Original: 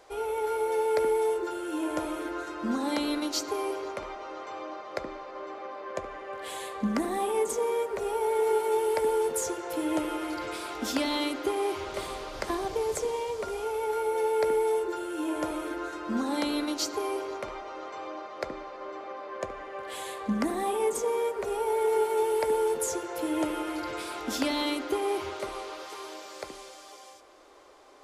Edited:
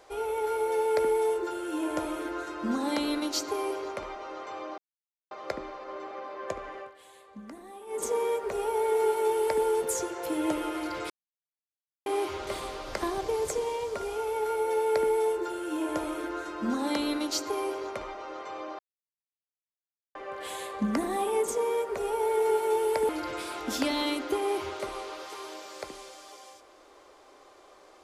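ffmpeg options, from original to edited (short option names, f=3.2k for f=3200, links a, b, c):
-filter_complex "[0:a]asplit=9[a][b][c][d][e][f][g][h][i];[a]atrim=end=4.78,asetpts=PTS-STARTPTS,afade=t=out:st=4.776:d=0.004:c=hsin,apad=pad_dur=0.53[j];[b]atrim=start=4.78:end=6.45,asetpts=PTS-STARTPTS,afade=t=in:d=0.004:c=hsin,afade=t=out:st=1.48:d=0.19:c=qua:silence=0.149624[k];[c]atrim=start=6.45:end=7.31,asetpts=PTS-STARTPTS,volume=-16.5dB[l];[d]atrim=start=7.31:end=10.57,asetpts=PTS-STARTPTS,afade=t=in:d=0.19:c=qua:silence=0.149624,afade=t=out:st=3.256:d=0.004:c=hsin[m];[e]atrim=start=10.57:end=11.53,asetpts=PTS-STARTPTS,volume=0[n];[f]atrim=start=11.53:end=18.26,asetpts=PTS-STARTPTS,afade=t=in:d=0.004:c=hsin,afade=t=out:st=6.726:d=0.004:c=hsin[o];[g]atrim=start=18.26:end=19.62,asetpts=PTS-STARTPTS,volume=0[p];[h]atrim=start=19.62:end=22.562,asetpts=PTS-STARTPTS,afade=t=in:d=0.004:c=hsin[q];[i]atrim=start=23.688[r];[j][k][l][m][n][o][p][q]concat=n=8:v=0:a=1[s];[s][r]acrossfade=d=0.004:c1=hsin:c2=hsin"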